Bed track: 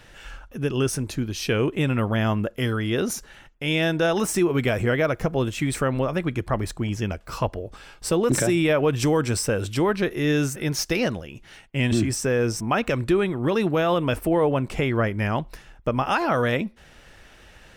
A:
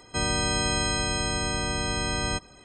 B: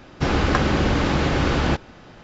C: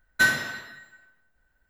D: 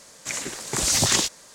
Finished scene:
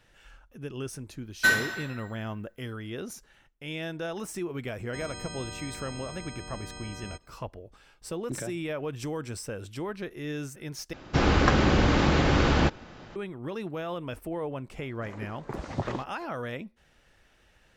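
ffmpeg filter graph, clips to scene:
-filter_complex "[0:a]volume=0.224[s0];[4:a]lowpass=1100[s1];[s0]asplit=2[s2][s3];[s2]atrim=end=10.934[s4];[2:a]atrim=end=2.23,asetpts=PTS-STARTPTS,volume=0.794[s5];[s3]atrim=start=13.156[s6];[3:a]atrim=end=1.69,asetpts=PTS-STARTPTS,volume=0.841,afade=t=in:d=0.004:c=hsin,afade=t=out:st=1.686:d=0.004:c=hsin,adelay=1240[s7];[1:a]atrim=end=2.64,asetpts=PTS-STARTPTS,volume=0.178,afade=t=in:d=0.004:c=hsin,afade=t=out:st=2.636:d=0.004:c=hsin,adelay=4790[s8];[s1]atrim=end=1.54,asetpts=PTS-STARTPTS,volume=0.562,afade=t=in:d=0.004:c=hsin,afade=t=out:st=1.536:d=0.004:c=hsin,adelay=650916S[s9];[s4][s5]acrossfade=d=0.004:c1=hsin:c2=hsin[s10];[s10][s6]acrossfade=d=0.004:c1=hsin:c2=hsin[s11];[s11][s7][s8][s9]amix=inputs=4:normalize=0"

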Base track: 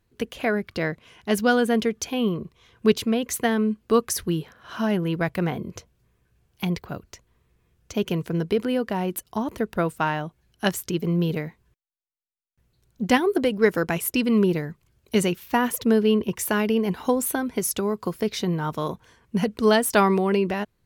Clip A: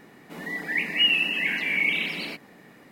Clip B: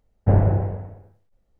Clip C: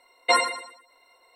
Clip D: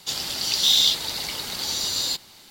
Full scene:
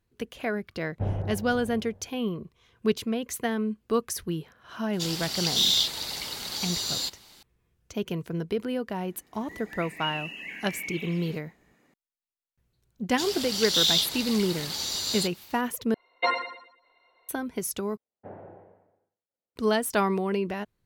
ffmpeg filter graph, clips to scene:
-filter_complex "[2:a]asplit=2[s0][s1];[4:a]asplit=2[s2][s3];[0:a]volume=0.501[s4];[s0]aecho=1:1:484:0.266[s5];[1:a]equalizer=f=6700:w=5.4:g=10[s6];[3:a]lowpass=f=3800:w=0.5412,lowpass=f=3800:w=1.3066[s7];[s1]highpass=310[s8];[s4]asplit=3[s9][s10][s11];[s9]atrim=end=15.944[s12];[s7]atrim=end=1.35,asetpts=PTS-STARTPTS,volume=0.596[s13];[s10]atrim=start=17.286:end=17.974[s14];[s8]atrim=end=1.59,asetpts=PTS-STARTPTS,volume=0.126[s15];[s11]atrim=start=19.556[s16];[s5]atrim=end=1.59,asetpts=PTS-STARTPTS,volume=0.237,afade=t=in:d=0.004:c=hsin,afade=t=out:st=1.586:d=0.004:c=hsin,adelay=730[s17];[s2]atrim=end=2.5,asetpts=PTS-STARTPTS,volume=0.596,afade=t=in:d=0.004:c=hsin,afade=t=out:st=2.496:d=0.004:c=hsin,adelay=217413S[s18];[s6]atrim=end=2.91,asetpts=PTS-STARTPTS,volume=0.211,afade=t=in:d=0.004:c=hsin,afade=t=out:st=2.906:d=0.004:c=hsin,adelay=9030[s19];[s3]atrim=end=2.5,asetpts=PTS-STARTPTS,volume=0.596,afade=t=in:d=0.004:c=hsin,afade=t=out:st=2.496:d=0.004:c=hsin,adelay=13110[s20];[s12][s13]acrossfade=d=0.004:c1=hsin:c2=hsin[s21];[s21][s14]acrossfade=d=0.004:c1=hsin:c2=hsin[s22];[s22][s15]acrossfade=d=0.004:c1=hsin:c2=hsin[s23];[s23][s16]acrossfade=d=0.004:c1=hsin:c2=hsin[s24];[s24][s17][s18][s19][s20]amix=inputs=5:normalize=0"

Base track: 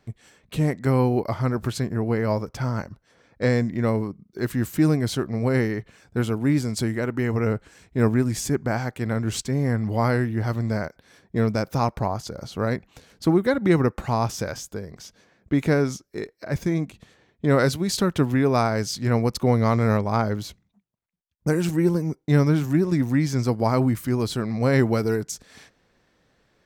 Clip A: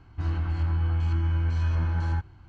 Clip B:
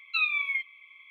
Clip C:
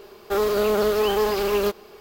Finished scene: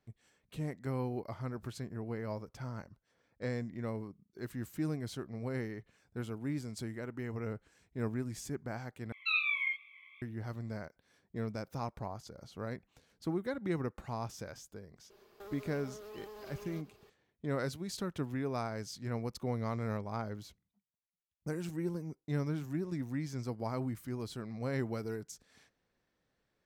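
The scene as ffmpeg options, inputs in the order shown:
-filter_complex "[0:a]volume=0.158[s0];[2:a]flanger=delay=19.5:depth=7.7:speed=2.5[s1];[3:a]acompressor=threshold=0.0355:ratio=6:attack=3.2:release=140:knee=1:detection=peak[s2];[s0]asplit=2[s3][s4];[s3]atrim=end=9.124[s5];[s1]atrim=end=1.1,asetpts=PTS-STARTPTS,volume=0.841[s6];[s4]atrim=start=10.216[s7];[s2]atrim=end=2,asetpts=PTS-STARTPTS,volume=0.133,afade=t=in:d=0.004:c=hsin,afade=t=out:st=1.996:d=0.004:c=hsin,adelay=15100[s8];[s5][s6]acrossfade=d=0.004:c1=hsin:c2=hsin[s9];[s9][s7]acrossfade=d=0.004:c1=hsin:c2=hsin[s10];[s10][s8]amix=inputs=2:normalize=0"

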